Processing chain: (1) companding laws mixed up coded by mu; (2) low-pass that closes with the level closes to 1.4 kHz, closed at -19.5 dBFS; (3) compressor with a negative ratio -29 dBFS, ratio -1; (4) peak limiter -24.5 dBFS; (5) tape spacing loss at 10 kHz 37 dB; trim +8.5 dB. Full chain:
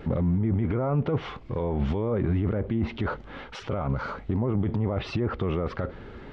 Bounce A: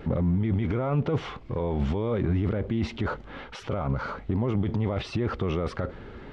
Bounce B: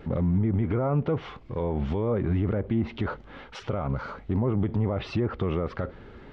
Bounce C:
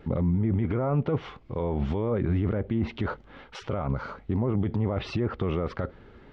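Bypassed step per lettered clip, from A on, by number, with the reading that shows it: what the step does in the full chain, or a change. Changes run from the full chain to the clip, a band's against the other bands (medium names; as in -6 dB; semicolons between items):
2, 4 kHz band +1.5 dB; 3, 2 kHz band -2.0 dB; 1, distortion -24 dB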